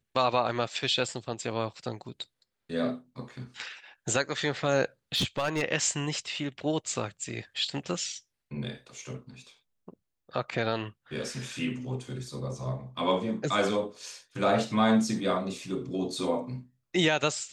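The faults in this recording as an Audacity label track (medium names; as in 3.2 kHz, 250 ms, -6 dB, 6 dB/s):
5.140000	5.620000	clipped -23 dBFS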